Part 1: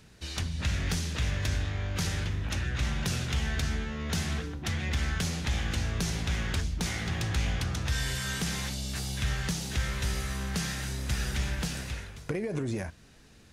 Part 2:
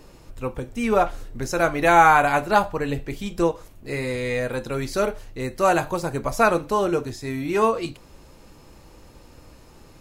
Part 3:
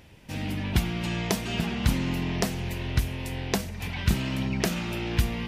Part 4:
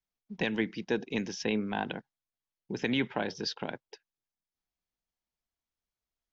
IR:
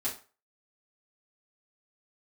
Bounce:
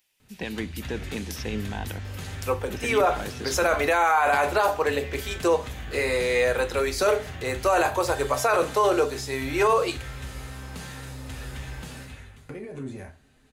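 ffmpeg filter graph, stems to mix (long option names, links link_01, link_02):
-filter_complex "[0:a]equalizer=frequency=5400:width=2.9:gain=-9.5,asoftclip=type=tanh:threshold=-22dB,adelay=200,volume=-9dB,asplit=2[link_01][link_02];[link_02]volume=-3dB[link_03];[1:a]highpass=frequency=390:width=0.5412,highpass=frequency=390:width=1.3066,adelay=2050,volume=3dB,asplit=2[link_04][link_05];[link_05]volume=-12dB[link_06];[2:a]aderivative,volume=-6.5dB[link_07];[3:a]alimiter=limit=-20dB:level=0:latency=1,volume=-0.5dB[link_08];[4:a]atrim=start_sample=2205[link_09];[link_03][link_06]amix=inputs=2:normalize=0[link_10];[link_10][link_09]afir=irnorm=-1:irlink=0[link_11];[link_01][link_04][link_07][link_08][link_11]amix=inputs=5:normalize=0,alimiter=limit=-12.5dB:level=0:latency=1:release=11"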